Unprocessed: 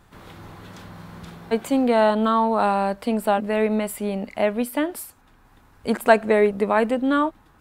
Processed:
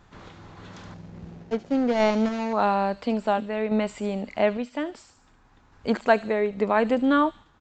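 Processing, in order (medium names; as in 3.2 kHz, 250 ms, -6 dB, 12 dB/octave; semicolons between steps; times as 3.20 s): 0.94–2.53 s: median filter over 41 samples; random-step tremolo; on a send: feedback echo behind a high-pass 73 ms, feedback 49%, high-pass 4.8 kHz, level -5.5 dB; on the sum: resampled via 16 kHz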